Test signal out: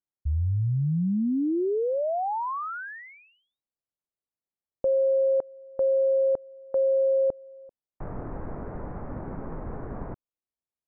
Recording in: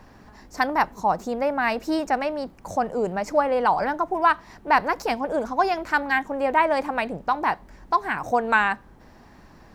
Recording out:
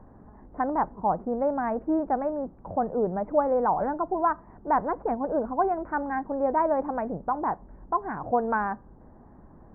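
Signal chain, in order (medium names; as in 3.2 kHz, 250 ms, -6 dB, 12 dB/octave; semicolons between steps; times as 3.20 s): Gaussian low-pass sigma 7.6 samples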